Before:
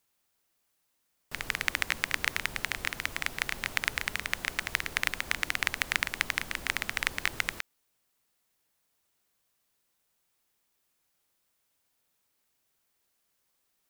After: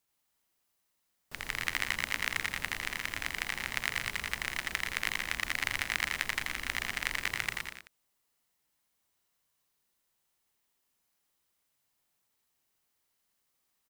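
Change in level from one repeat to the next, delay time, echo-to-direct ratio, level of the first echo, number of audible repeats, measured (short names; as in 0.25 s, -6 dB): no steady repeat, 83 ms, -1.0 dB, -3.0 dB, 5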